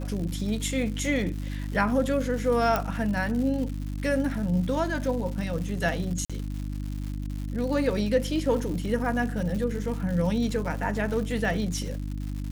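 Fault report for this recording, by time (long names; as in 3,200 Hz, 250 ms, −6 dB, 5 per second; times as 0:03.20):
surface crackle 220 per second −34 dBFS
mains hum 50 Hz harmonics 6 −32 dBFS
0:02.76: click
0:06.25–0:06.30: drop-out 46 ms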